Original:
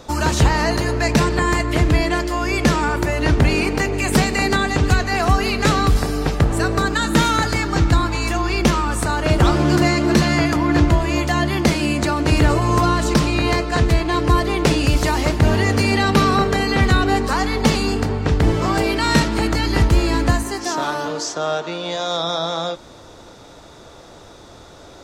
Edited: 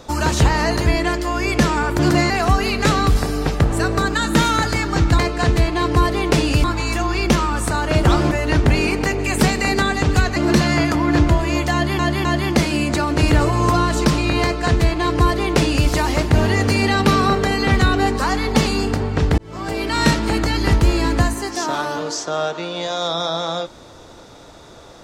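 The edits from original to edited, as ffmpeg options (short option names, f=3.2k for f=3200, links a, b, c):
-filter_complex "[0:a]asplit=11[a][b][c][d][e][f][g][h][i][j][k];[a]atrim=end=0.862[l];[b]atrim=start=1.918:end=3.052[m];[c]atrim=start=9.658:end=9.972[n];[d]atrim=start=5.098:end=7.992[o];[e]atrim=start=13.518:end=14.972[p];[f]atrim=start=7.988:end=9.662[q];[g]atrim=start=3.048:end=5.102[r];[h]atrim=start=9.968:end=11.602[s];[i]atrim=start=11.338:end=11.602[t];[j]atrim=start=11.338:end=18.47,asetpts=PTS-STARTPTS,afade=t=out:st=7.128:d=0.004:c=hsin[u];[k]atrim=start=18.47,asetpts=PTS-STARTPTS,afade=t=in:d=0.66[v];[l][m]acrossfade=d=0.004:c1=hsin:c2=hsin[w];[w][n]acrossfade=d=0.004:c1=hsin:c2=hsin[x];[x][o]acrossfade=d=0.004:c1=hsin:c2=hsin[y];[y][p]acrossfade=d=0.004:c1=hsin:c2=hsin[z];[z][q]acrossfade=d=0.004:c1=hsin:c2=hsin[aa];[aa][r]acrossfade=d=0.004:c1=hsin:c2=hsin[ab];[ab][s]acrossfade=d=0.004:c1=hsin:c2=hsin[ac];[ac][t]acrossfade=d=0.004:c1=hsin:c2=hsin[ad];[u][v]concat=n=2:v=0:a=1[ae];[ad][ae]acrossfade=d=0.004:c1=hsin:c2=hsin"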